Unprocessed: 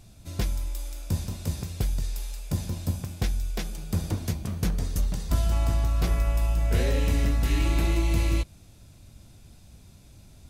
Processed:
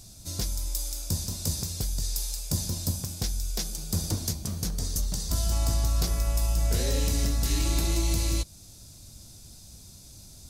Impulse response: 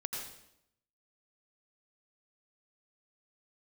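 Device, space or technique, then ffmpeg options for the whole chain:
over-bright horn tweeter: -af "highshelf=frequency=3600:width_type=q:width=1.5:gain=10.5,alimiter=limit=-15.5dB:level=0:latency=1:release=379"

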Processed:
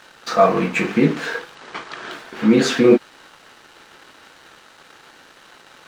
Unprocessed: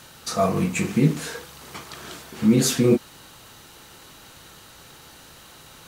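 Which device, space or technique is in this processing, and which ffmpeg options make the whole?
pocket radio on a weak battery: -filter_complex "[0:a]highpass=290,lowpass=3300,aeval=exprs='sgn(val(0))*max(abs(val(0))-0.00237,0)':channel_layout=same,equalizer=frequency=1600:width_type=o:width=0.45:gain=4.5,asettb=1/sr,asplit=3[link_01][link_02][link_03];[link_01]atrim=end=1.554[link_04];[link_02]atrim=start=1.55:end=2.11,asetpts=PTS-STARTPTS,afade=type=in:duration=0.004:curve=qsin,afade=type=out:start_time=0.556:duration=0.004:curve=qsin,lowpass=frequency=8700:width=0.5412,lowpass=frequency=8700:width=1.3066[link_05];[link_03]atrim=start=2.106[link_06];[link_04][link_05]acrossfade=duration=0.004:curve1=hsin:curve2=qsin[link_07];[link_07][link_06]acrossfade=duration=0.004:curve1=qsin:curve2=hsin,volume=8.5dB"

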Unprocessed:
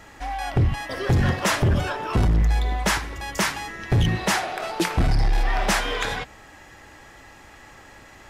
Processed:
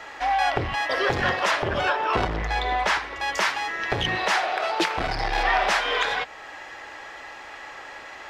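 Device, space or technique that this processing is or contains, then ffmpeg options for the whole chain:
DJ mixer with the lows and highs turned down: -filter_complex "[0:a]acrossover=split=410 5400:gain=0.112 1 0.158[link_01][link_02][link_03];[link_01][link_02][link_03]amix=inputs=3:normalize=0,alimiter=limit=-19.5dB:level=0:latency=1:release=466,asettb=1/sr,asplit=3[link_04][link_05][link_06];[link_04]atrim=end=1.514[link_07];[link_05]atrim=start=1.51:end=3.2,asetpts=PTS-STARTPTS,afade=type=in:duration=0.004:curve=qsin,afade=type=out:start_time=1.686:duration=0.004:curve=qsin,highshelf=frequency=6200:gain=-6[link_08];[link_06]atrim=start=3.196[link_09];[link_07][link_08]acrossfade=duration=0.004:curve1=hsin:curve2=qsin[link_10];[link_10][link_09]acrossfade=duration=0.004:curve1=qsin:curve2=hsin,volume=8.5dB"

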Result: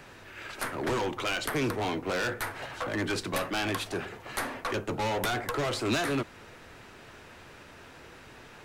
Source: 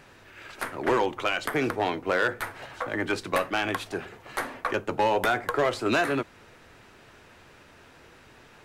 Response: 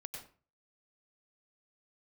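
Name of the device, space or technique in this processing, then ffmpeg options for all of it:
one-band saturation: -filter_complex "[0:a]acrossover=split=200|3600[link_01][link_02][link_03];[link_02]asoftclip=type=tanh:threshold=-31.5dB[link_04];[link_01][link_04][link_03]amix=inputs=3:normalize=0,volume=3dB"

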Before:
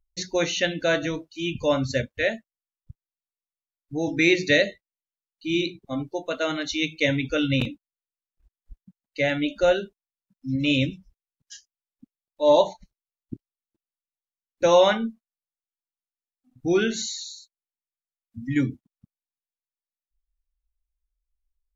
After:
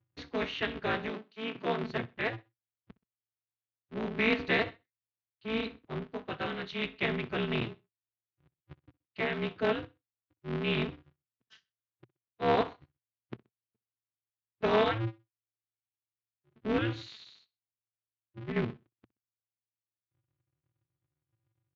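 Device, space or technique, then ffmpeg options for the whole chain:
ring modulator pedal into a guitar cabinet: -filter_complex "[0:a]aeval=exprs='val(0)*sgn(sin(2*PI*110*n/s))':channel_layout=same,highpass=88,equalizer=frequency=120:width_type=q:width=4:gain=7,equalizer=frequency=590:width_type=q:width=4:gain=-5,equalizer=frequency=840:width_type=q:width=4:gain=-4,lowpass=frequency=3400:width=0.5412,lowpass=frequency=3400:width=1.3066,asettb=1/sr,asplit=3[link_01][link_02][link_03];[link_01]atrim=end=1.104[link_04];[link_02]atrim=start=1.1:end=1.84,asetpts=PTS-STARTPTS,afade=type=in:duration=0.004:curve=qsin,afade=type=out:start_time=0.736:duration=0.004:curve=qsin,highpass=frequency=160:width=0.5412,highpass=frequency=160:width=1.3066[link_05];[link_03]atrim=start=1.836[link_06];[link_04][link_05]acrossfade=duration=0.004:curve1=hsin:curve2=qsin[link_07];[link_07][link_06]acrossfade=duration=0.004:curve1=qsin:curve2=hsin,aecho=1:1:63|126:0.075|0.0255,volume=-7.5dB"

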